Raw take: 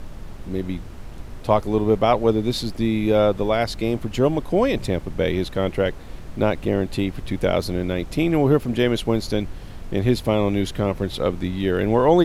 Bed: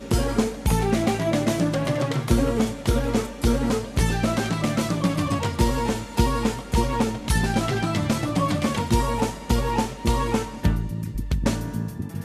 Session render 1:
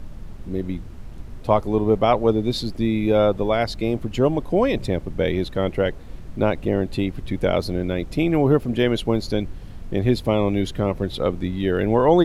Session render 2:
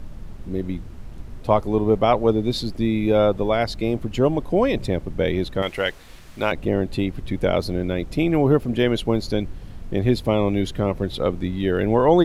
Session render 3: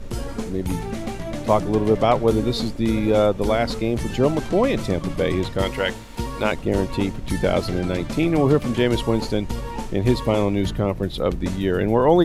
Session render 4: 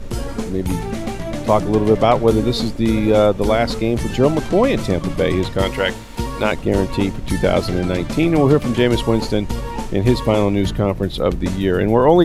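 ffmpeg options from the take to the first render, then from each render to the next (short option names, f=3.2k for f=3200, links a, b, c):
-af "afftdn=nr=6:nf=-36"
-filter_complex "[0:a]asettb=1/sr,asplit=3[a][b][c];[a]atrim=end=5.624[d];[b]atrim=start=5.62:end=6.52,asetpts=PTS-STARTPTS,afade=t=in:d=0.004:c=qsin,afade=t=out:st=0.896:d=0.004:c=qsin,tiltshelf=f=820:g=-9.5[e];[c]atrim=start=6.516[f];[d][e]acrossfade=d=0.004:c1=hsin:c2=qsin[g];[g][f]acrossfade=d=0.004:c1=qsin:c2=hsin"
-filter_complex "[1:a]volume=-7.5dB[a];[0:a][a]amix=inputs=2:normalize=0"
-af "volume=4dB,alimiter=limit=-2dB:level=0:latency=1"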